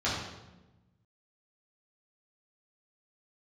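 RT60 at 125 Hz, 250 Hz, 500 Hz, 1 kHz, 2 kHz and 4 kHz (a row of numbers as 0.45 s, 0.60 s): 1.8 s, 1.6 s, 1.2 s, 0.95 s, 0.85 s, 0.80 s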